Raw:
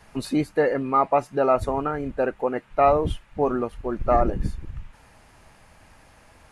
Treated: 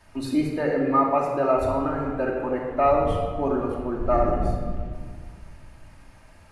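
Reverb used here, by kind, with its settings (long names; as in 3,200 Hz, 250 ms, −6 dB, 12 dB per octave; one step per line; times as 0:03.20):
rectangular room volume 2,400 cubic metres, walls mixed, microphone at 2.7 metres
level −5.5 dB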